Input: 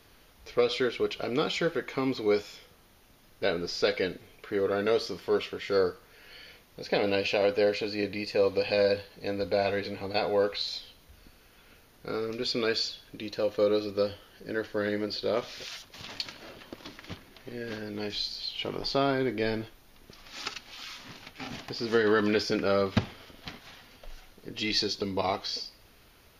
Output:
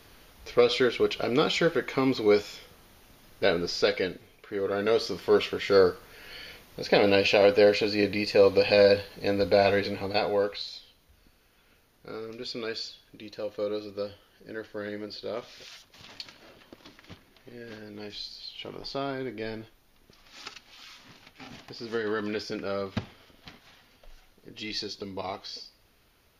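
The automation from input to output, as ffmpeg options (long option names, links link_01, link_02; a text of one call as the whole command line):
ffmpeg -i in.wav -af "volume=14dB,afade=type=out:start_time=3.52:duration=0.95:silence=0.375837,afade=type=in:start_time=4.47:duration=0.97:silence=0.316228,afade=type=out:start_time=9.74:duration=0.98:silence=0.266073" out.wav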